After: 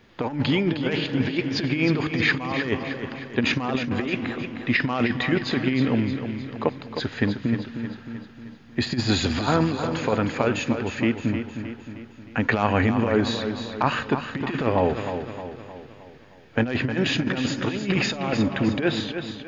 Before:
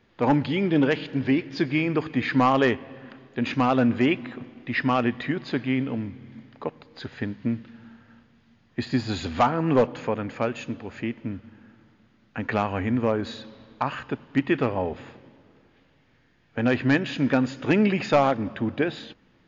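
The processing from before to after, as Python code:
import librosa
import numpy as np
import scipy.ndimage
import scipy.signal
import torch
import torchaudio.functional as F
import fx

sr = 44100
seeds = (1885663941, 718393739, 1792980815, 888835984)

p1 = fx.high_shelf(x, sr, hz=3700.0, db=4.0)
p2 = fx.over_compress(p1, sr, threshold_db=-25.0, ratio=-0.5)
p3 = p2 + fx.echo_feedback(p2, sr, ms=310, feedback_pct=51, wet_db=-8.5, dry=0)
y = p3 * librosa.db_to_amplitude(3.5)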